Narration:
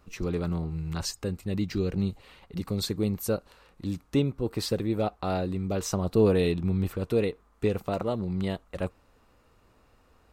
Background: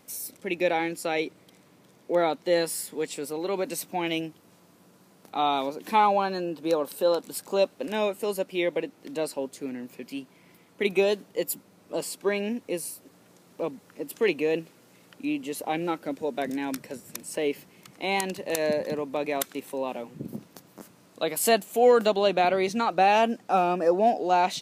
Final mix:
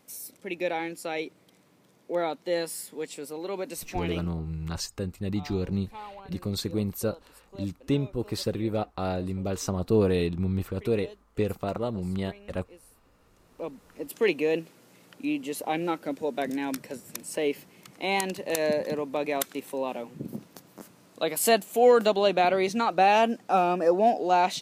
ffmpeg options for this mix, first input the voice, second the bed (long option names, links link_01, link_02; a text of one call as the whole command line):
ffmpeg -i stem1.wav -i stem2.wav -filter_complex "[0:a]adelay=3750,volume=-1dB[link_01];[1:a]volume=17dB,afade=type=out:start_time=4:duration=0.38:silence=0.141254,afade=type=in:start_time=13.04:duration=1.19:silence=0.0841395[link_02];[link_01][link_02]amix=inputs=2:normalize=0" out.wav